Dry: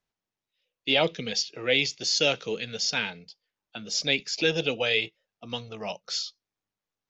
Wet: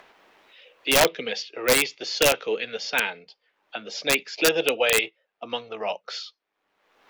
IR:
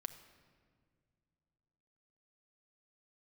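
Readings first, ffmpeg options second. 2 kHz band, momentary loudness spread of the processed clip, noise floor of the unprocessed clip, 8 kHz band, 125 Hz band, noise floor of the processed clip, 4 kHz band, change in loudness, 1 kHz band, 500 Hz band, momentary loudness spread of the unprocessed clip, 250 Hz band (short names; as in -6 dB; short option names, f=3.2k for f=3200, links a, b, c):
+4.0 dB, 14 LU, under -85 dBFS, n/a, -4.0 dB, -79 dBFS, 0.0 dB, +3.0 dB, +7.5 dB, +5.0 dB, 13 LU, +1.0 dB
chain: -filter_complex "[0:a]acompressor=mode=upward:threshold=-34dB:ratio=2.5,acrossover=split=310 3200:gain=0.0794 1 0.1[a][b][c];[a][b][c]amix=inputs=3:normalize=0,aeval=exprs='(mod(6.68*val(0)+1,2)-1)/6.68':c=same,volume=7dB"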